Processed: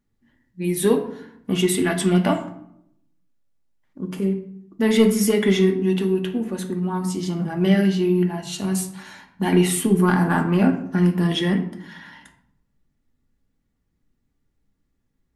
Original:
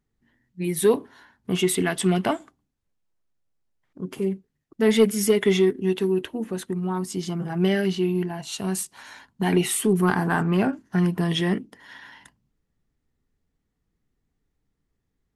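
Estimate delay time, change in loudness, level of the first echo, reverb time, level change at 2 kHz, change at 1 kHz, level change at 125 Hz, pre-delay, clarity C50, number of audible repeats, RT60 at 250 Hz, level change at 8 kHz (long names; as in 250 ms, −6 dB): no echo audible, +3.0 dB, no echo audible, 0.70 s, +1.5 dB, +2.0 dB, +4.0 dB, 3 ms, 10.5 dB, no echo audible, 0.95 s, +1.0 dB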